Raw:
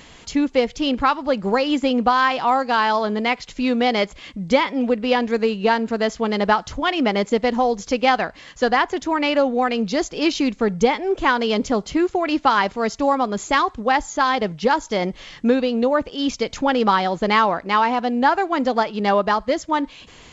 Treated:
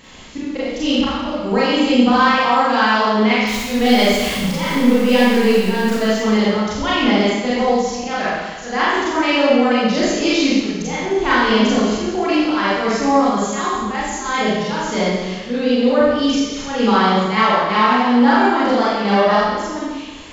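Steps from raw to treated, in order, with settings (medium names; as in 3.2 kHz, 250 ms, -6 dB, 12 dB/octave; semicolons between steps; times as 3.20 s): 3.47–5.93 s: jump at every zero crossing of -26 dBFS; dynamic bell 790 Hz, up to -4 dB, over -29 dBFS, Q 1; slow attack 185 ms; Schroeder reverb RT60 1.3 s, combs from 29 ms, DRR -9 dB; trim -3 dB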